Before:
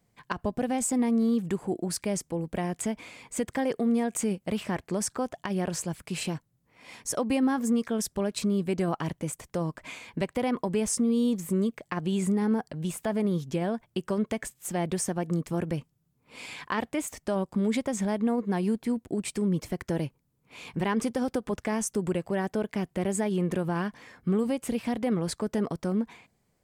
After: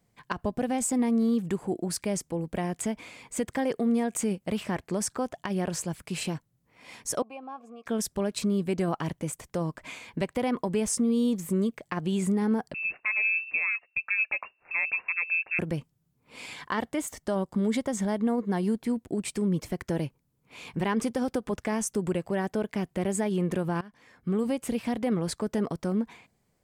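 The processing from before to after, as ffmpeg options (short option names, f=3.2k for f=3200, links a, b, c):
-filter_complex "[0:a]asettb=1/sr,asplit=3[a][b][c];[a]atrim=end=7.224[d];[b]atrim=start=7.22:end=7.86,asetpts=PTS-STARTPTS,afade=t=in:d=0.004:c=qsin,afade=t=out:st=0.636:d=0.004:c=qsin,asplit=3[e][f][g];[e]bandpass=f=730:t=q:w=8,volume=0dB[h];[f]bandpass=f=1.09k:t=q:w=8,volume=-6dB[i];[g]bandpass=f=2.44k:t=q:w=8,volume=-9dB[j];[h][i][j]amix=inputs=3:normalize=0[k];[c]atrim=start=7.856[l];[d][k]acrossfade=d=0.004:c1=hsin:c2=qsin[m];[m][l]acrossfade=d=0.004:c1=qsin:c2=hsin,asettb=1/sr,asplit=3[n][o][p];[n]atrim=end=12.744[q];[o]atrim=start=12.74:end=15.59,asetpts=PTS-STARTPTS,afade=t=in:d=0.004:c=qsin,afade=t=out:st=2.846:d=0.004:c=qsin,lowpass=f=2.4k:t=q:w=0.5098,lowpass=f=2.4k:t=q:w=0.6013,lowpass=f=2.4k:t=q:w=0.9,lowpass=f=2.4k:t=q:w=2.563,afreqshift=-2800[r];[p]atrim=start=15.586[s];[q][r]acrossfade=d=0.004:c1=hsin:c2=qsin[t];[t][s]acrossfade=d=0.004:c1=qsin:c2=hsin,asettb=1/sr,asplit=3[u][v][w];[u]atrim=end=16.534[x];[v]atrim=start=16.53:end=18.8,asetpts=PTS-STARTPTS,afade=t=in:d=0.004:c=qsin,afade=t=out:st=2.266:d=0.004:c=qsin,bandreject=f=2.5k:w=7.6[y];[w]atrim=start=18.796[z];[x][y]acrossfade=d=0.004:c1=hsin:c2=qsin[aa];[aa][z]acrossfade=d=0.004:c1=qsin:c2=hsin,asplit=2[ab][ac];[ab]atrim=end=23.81,asetpts=PTS-STARTPTS,afade=t=out:st=23.806:d=0.004:c=hsin:silence=0.0841395[ad];[ac]atrim=start=23.81,asetpts=PTS-STARTPTS,afade=t=in:d=0.67:silence=0.0841395[ae];[ad][ae]concat=n=2:v=0:a=1"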